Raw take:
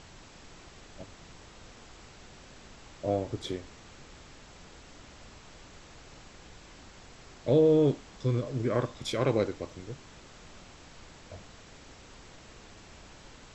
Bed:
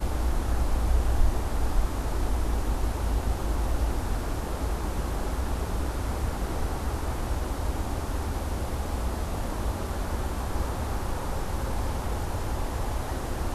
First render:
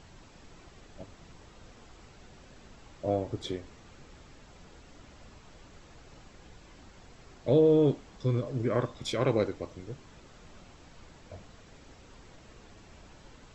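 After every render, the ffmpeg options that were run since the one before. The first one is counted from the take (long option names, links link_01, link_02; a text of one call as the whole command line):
ffmpeg -i in.wav -af "afftdn=noise_reduction=6:noise_floor=-52" out.wav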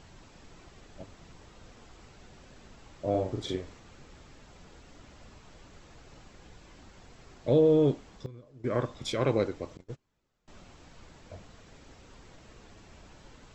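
ffmpeg -i in.wav -filter_complex "[0:a]asettb=1/sr,asplit=3[link_01][link_02][link_03];[link_01]atrim=end=3.104[link_04];[link_02]atrim=start=3.1:end=3.79,asetpts=PTS-STARTPTS,afade=type=in:duration=0.004:curve=qsin,afade=type=out:start_time=0.686:duration=0.004:curve=qsin,asplit=2[link_05][link_06];[link_06]adelay=43,volume=-3.5dB[link_07];[link_05][link_07]amix=inputs=2:normalize=0,atrim=end_sample=30429[link_08];[link_03]atrim=start=3.786[link_09];[link_04][link_08]acrossfade=duration=0.004:curve1=hsin:curve2=qsin[link_10];[link_10][link_09]acrossfade=duration=0.004:curve1=qsin:curve2=hsin,asettb=1/sr,asplit=3[link_11][link_12][link_13];[link_11]atrim=end=9.774[link_14];[link_12]atrim=start=9.77:end=10.48,asetpts=PTS-STARTPTS,afade=type=in:duration=0.004:curve=qsin,afade=type=out:start_time=0.706:duration=0.004:curve=qsin,agate=range=-26dB:threshold=-42dB:ratio=16:release=100:detection=peak[link_15];[link_13]atrim=start=10.476[link_16];[link_14][link_15]acrossfade=duration=0.004:curve1=hsin:curve2=qsin[link_17];[link_17][link_16]acrossfade=duration=0.004:curve1=qsin:curve2=hsin,asplit=3[link_18][link_19][link_20];[link_18]atrim=end=8.26,asetpts=PTS-STARTPTS,afade=type=out:start_time=7.87:duration=0.39:curve=log:silence=0.105925[link_21];[link_19]atrim=start=8.26:end=8.64,asetpts=PTS-STARTPTS,volume=-19.5dB[link_22];[link_20]atrim=start=8.64,asetpts=PTS-STARTPTS,afade=type=in:duration=0.39:curve=log:silence=0.105925[link_23];[link_21][link_22][link_23]concat=n=3:v=0:a=1" out.wav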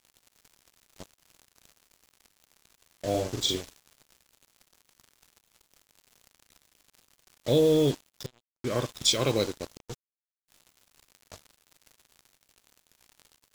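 ffmpeg -i in.wav -af "aexciter=amount=6.7:drive=1.7:freq=2700,acrusher=bits=5:mix=0:aa=0.5" out.wav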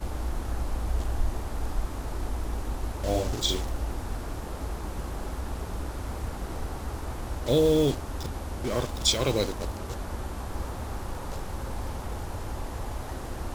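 ffmpeg -i in.wav -i bed.wav -filter_complex "[1:a]volume=-4.5dB[link_01];[0:a][link_01]amix=inputs=2:normalize=0" out.wav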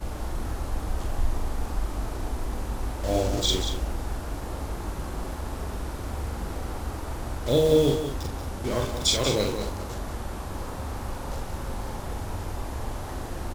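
ffmpeg -i in.wav -filter_complex "[0:a]asplit=2[link_01][link_02];[link_02]adelay=43,volume=-5dB[link_03];[link_01][link_03]amix=inputs=2:normalize=0,aecho=1:1:185:0.376" out.wav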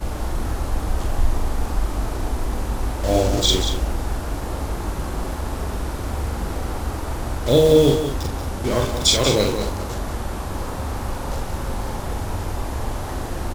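ffmpeg -i in.wav -af "volume=6.5dB,alimiter=limit=-3dB:level=0:latency=1" out.wav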